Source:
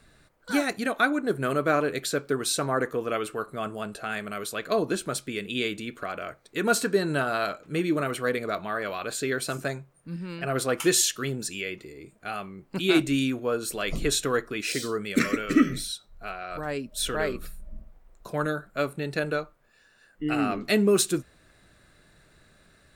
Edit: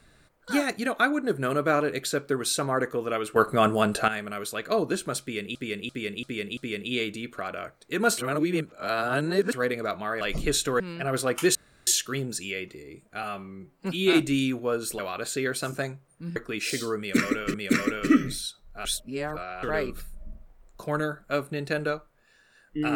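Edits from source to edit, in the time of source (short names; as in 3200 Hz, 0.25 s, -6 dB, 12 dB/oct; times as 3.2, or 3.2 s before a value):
3.36–4.08 gain +11 dB
5.21–5.55 loop, 5 plays
6.82–8.17 reverse
8.85–10.22 swap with 13.79–14.38
10.97 insert room tone 0.32 s
12.33–12.93 stretch 1.5×
15–15.56 loop, 2 plays
16.31–17.09 reverse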